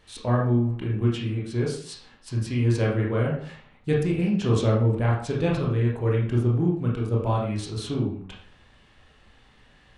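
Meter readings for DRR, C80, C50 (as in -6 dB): -4.0 dB, 8.0 dB, 4.0 dB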